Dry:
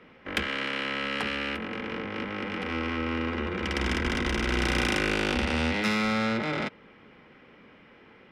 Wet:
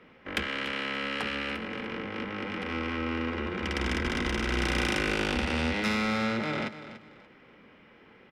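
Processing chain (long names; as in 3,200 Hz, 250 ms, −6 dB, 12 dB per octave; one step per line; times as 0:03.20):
repeating echo 289 ms, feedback 27%, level −13 dB
level −2 dB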